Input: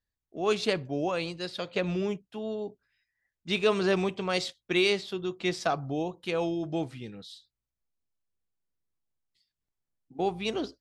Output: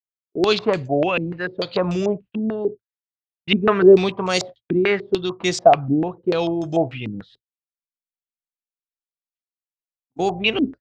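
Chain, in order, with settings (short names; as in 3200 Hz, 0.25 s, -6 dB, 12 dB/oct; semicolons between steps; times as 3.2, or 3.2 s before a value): gate -47 dBFS, range -40 dB; bell 110 Hz +6.5 dB 0.45 oct; stepped low-pass 6.8 Hz 260–6900 Hz; gain +7 dB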